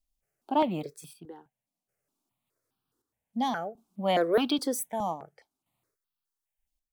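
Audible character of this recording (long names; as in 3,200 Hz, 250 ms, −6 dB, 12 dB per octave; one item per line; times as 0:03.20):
chopped level 0.53 Hz, depth 60%, duty 60%
notches that jump at a steady rate 4.8 Hz 400–2,000 Hz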